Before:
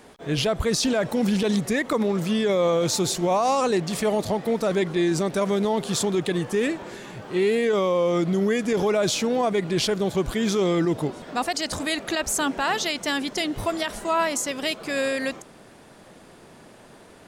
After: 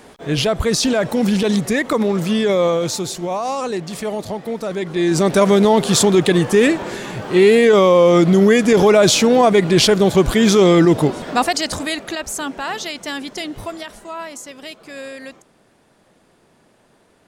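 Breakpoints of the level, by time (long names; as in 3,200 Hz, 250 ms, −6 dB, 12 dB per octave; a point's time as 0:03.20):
0:02.62 +5.5 dB
0:03.07 −1 dB
0:04.79 −1 dB
0:05.30 +10.5 dB
0:11.27 +10.5 dB
0:12.26 −1 dB
0:13.52 −1 dB
0:14.12 −7.5 dB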